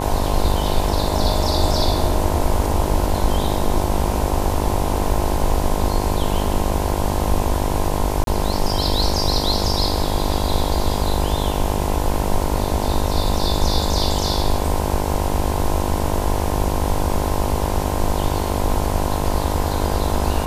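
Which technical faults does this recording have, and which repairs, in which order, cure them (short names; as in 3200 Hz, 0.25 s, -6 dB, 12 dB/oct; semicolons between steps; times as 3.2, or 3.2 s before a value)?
buzz 50 Hz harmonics 21 -24 dBFS
8.24–8.27 gap 32 ms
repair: de-hum 50 Hz, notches 21; interpolate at 8.24, 32 ms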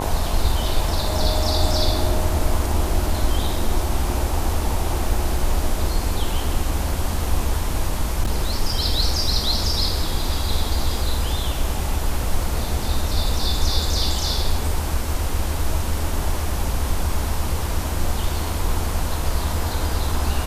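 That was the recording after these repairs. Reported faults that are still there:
none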